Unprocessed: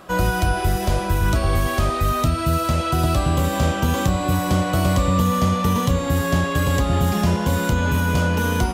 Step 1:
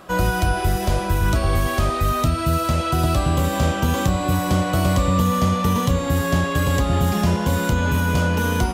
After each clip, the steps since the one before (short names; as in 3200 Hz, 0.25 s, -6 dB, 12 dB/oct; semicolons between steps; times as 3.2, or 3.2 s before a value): nothing audible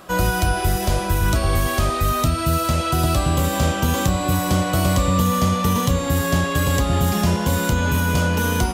high shelf 4000 Hz +5.5 dB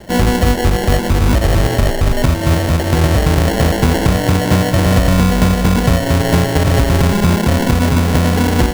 sample-and-hold 36×; gain +6.5 dB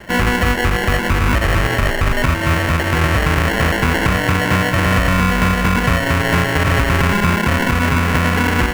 band shelf 1700 Hz +10 dB; in parallel at +2 dB: limiter -2.5 dBFS, peak gain reduction 7 dB; on the sum: gain -10 dB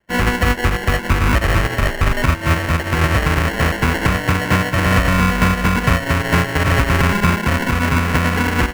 in parallel at -7 dB: soft clip -17.5 dBFS, distortion -8 dB; on the sum: upward expander 2.5:1, over -34 dBFS; gain +1 dB